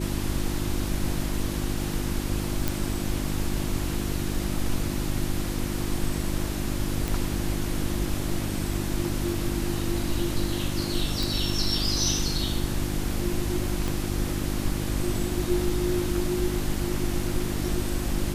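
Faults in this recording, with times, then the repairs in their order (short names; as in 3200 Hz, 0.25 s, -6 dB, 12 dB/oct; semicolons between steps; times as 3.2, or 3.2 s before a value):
hum 50 Hz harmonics 7 -31 dBFS
2.68 pop
7.08 pop
11.23 pop
13.88 pop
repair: de-click; de-hum 50 Hz, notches 7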